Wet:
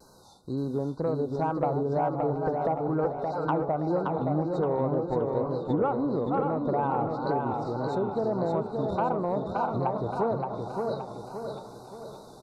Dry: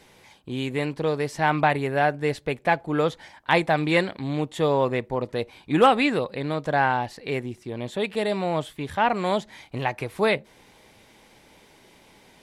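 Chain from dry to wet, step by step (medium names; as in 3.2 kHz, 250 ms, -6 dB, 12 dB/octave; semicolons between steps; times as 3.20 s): backward echo that repeats 322 ms, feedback 57%, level -11.5 dB; FFT band-reject 1.5–3.7 kHz; low-pass that closes with the level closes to 810 Hz, closed at -21.5 dBFS; dynamic bell 1.2 kHz, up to +4 dB, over -32 dBFS, Q 0.71; compression 5:1, threshold -24 dBFS, peak gain reduction 11.5 dB; saturation -15.5 dBFS, distortion -26 dB; thinning echo 720 ms, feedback 60%, level -19 dB; wow and flutter 93 cents; feedback delay 572 ms, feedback 46%, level -4 dB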